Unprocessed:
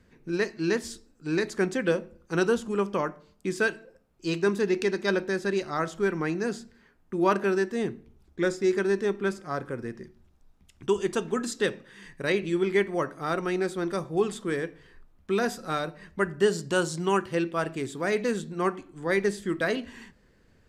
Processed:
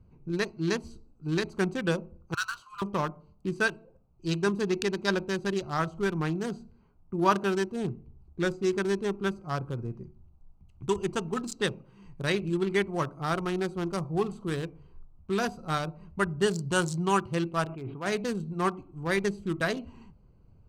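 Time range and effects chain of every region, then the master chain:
0:02.34–0:02.82: Chebyshev high-pass with heavy ripple 1,000 Hz, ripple 6 dB + double-tracking delay 18 ms −10.5 dB + power curve on the samples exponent 0.7
0:17.65–0:18.06: Butterworth low-pass 2,800 Hz + low-shelf EQ 470 Hz −9 dB + level that may fall only so fast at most 39 dB per second
whole clip: adaptive Wiener filter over 25 samples; octave-band graphic EQ 125/250/500/2,000 Hz +4/−8/−9/−6 dB; level +5.5 dB

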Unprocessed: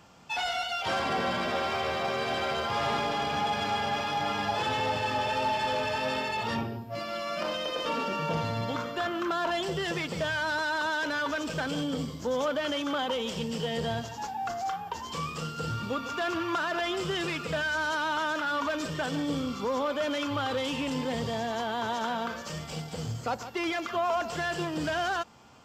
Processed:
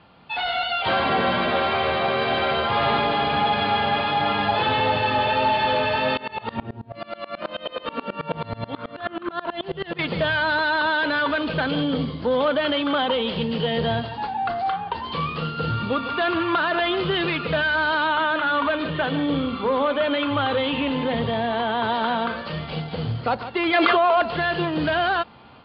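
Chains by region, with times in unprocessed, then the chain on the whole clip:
0:06.17–0:09.99: high-shelf EQ 4,700 Hz −7 dB + tremolo with a ramp in dB swelling 9.3 Hz, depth 25 dB
0:18.07–0:21.83: low-pass filter 4,000 Hz 24 dB per octave + mains-hum notches 50/100/150/200/250/300/350/400/450 Hz
0:23.73–0:24.22: low shelf with overshoot 280 Hz −8 dB, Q 1.5 + envelope flattener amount 100%
whole clip: Butterworth low-pass 4,500 Hz 96 dB per octave; automatic gain control gain up to 5 dB; level +3 dB

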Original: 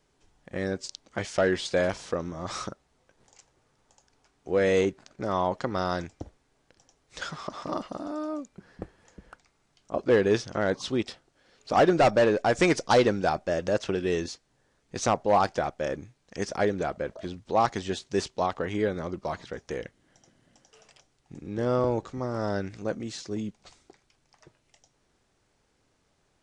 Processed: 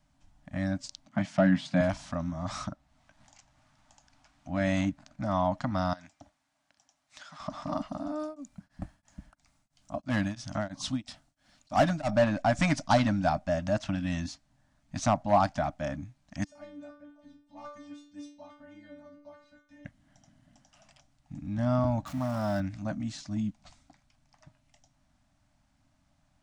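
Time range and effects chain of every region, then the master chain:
0:01.08–0:01.81: high-pass filter 160 Hz 24 dB per octave + bass and treble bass +12 dB, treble −8 dB
0:02.65–0:04.56: high-shelf EQ 7,900 Hz −10 dB + one half of a high-frequency compander encoder only
0:05.93–0:07.40: high-pass filter 920 Hz 6 dB per octave + downward compressor 12 to 1, threshold −41 dBFS
0:08.19–0:12.09: high-shelf EQ 5,700 Hz +11.5 dB + tremolo along a rectified sine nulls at 3 Hz
0:16.44–0:19.85: stiff-string resonator 290 Hz, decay 0.52 s, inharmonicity 0.002 + single-tap delay 269 ms −24 dB
0:22.06–0:22.60: converter with a step at zero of −37 dBFS + high-pass filter 150 Hz 6 dB per octave
whole clip: elliptic band-stop filter 290–600 Hz, stop band 40 dB; tilt shelving filter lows +4.5 dB, about 740 Hz

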